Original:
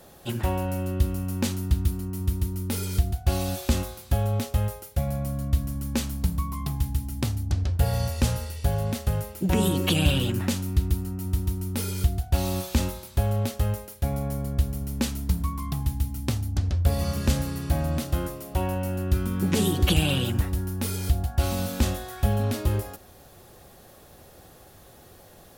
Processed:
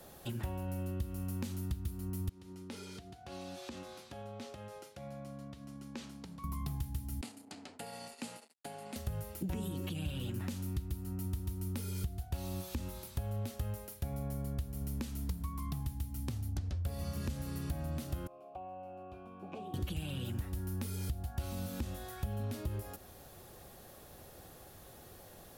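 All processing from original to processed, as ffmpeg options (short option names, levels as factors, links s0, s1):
-filter_complex "[0:a]asettb=1/sr,asplit=3[s0][s1][s2];[s0]atrim=end=2.294[s3];[s1]atrim=start=2.29:end=6.44,asetpts=PTS-STARTPTS,afade=t=in:d=0.004:c=qsin,afade=t=out:st=4.146:d=0.004:c=qsin,acompressor=threshold=0.0158:ratio=2.5:attack=3.2:release=140:knee=1:detection=peak,highpass=210,lowpass=5700[s4];[s2]atrim=start=6.436[s5];[s3][s4]acrossfade=d=0.004:c1=hsin:c2=qsin[s6];[s6][s5]acrossfade=d=0.004:c1=qsin:c2=hsin,asettb=1/sr,asplit=3[s7][s8][s9];[s7]atrim=end=7.214[s10];[s8]atrim=start=7.21:end=8.96,asetpts=PTS-STARTPTS,afade=t=in:d=0.004:c=qsin,afade=t=out:st=1.746:d=0.004:c=qsin,agate=range=0.0224:threshold=0.0501:ratio=3:release=100:detection=peak,aeval=exprs='sgn(val(0))*max(abs(val(0))-0.00708,0)':c=same,highpass=f=270:w=0.5412,highpass=f=270:w=1.3066,equalizer=f=360:t=q:w=4:g=-10,equalizer=f=550:t=q:w=4:g=-8,equalizer=f=1100:t=q:w=4:g=-6,equalizer=f=1600:t=q:w=4:g=-5,equalizer=f=3500:t=q:w=4:g=-5,equalizer=f=5800:t=q:w=4:g=-9,lowpass=f=9900:w=0.5412,lowpass=f=9900:w=1.3066[s11];[s9]atrim=start=8.956[s12];[s10][s11]acrossfade=d=0.004:c1=hsin:c2=qsin[s13];[s13][s12]acrossfade=d=0.004:c1=qsin:c2=hsin,asettb=1/sr,asplit=3[s14][s15][s16];[s14]atrim=end=18.274[s17];[s15]atrim=start=18.27:end=19.74,asetpts=PTS-STARTPTS,afade=t=in:d=0.004:c=qsin,afade=t=out:st=1.466:d=0.004:c=qsin,asplit=3[s18][s19][s20];[s18]bandpass=f=730:t=q:w=8,volume=1[s21];[s19]bandpass=f=1090:t=q:w=8,volume=0.501[s22];[s20]bandpass=f=2440:t=q:w=8,volume=0.355[s23];[s21][s22][s23]amix=inputs=3:normalize=0,tiltshelf=f=1300:g=5,bandreject=f=1300:w=11[s24];[s16]atrim=start=19.736[s25];[s17][s24]acrossfade=d=0.004:c1=hsin:c2=qsin[s26];[s26][s25]acrossfade=d=0.004:c1=qsin:c2=hsin,acompressor=threshold=0.0316:ratio=6,equalizer=f=12000:t=o:w=0.44:g=3,acrossover=split=280[s27][s28];[s28]acompressor=threshold=0.01:ratio=6[s29];[s27][s29]amix=inputs=2:normalize=0,volume=0.631"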